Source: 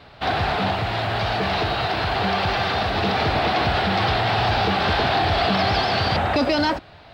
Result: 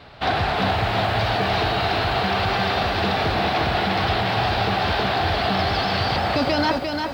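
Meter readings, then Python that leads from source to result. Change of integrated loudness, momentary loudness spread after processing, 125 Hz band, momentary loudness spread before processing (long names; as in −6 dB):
0.0 dB, 1 LU, 0.0 dB, 4 LU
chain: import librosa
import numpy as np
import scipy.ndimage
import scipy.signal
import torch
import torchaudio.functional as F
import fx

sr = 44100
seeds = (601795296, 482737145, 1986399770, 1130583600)

y = fx.rider(x, sr, range_db=4, speed_s=0.5)
y = fx.echo_crushed(y, sr, ms=349, feedback_pct=35, bits=8, wet_db=-4.5)
y = y * 10.0 ** (-1.5 / 20.0)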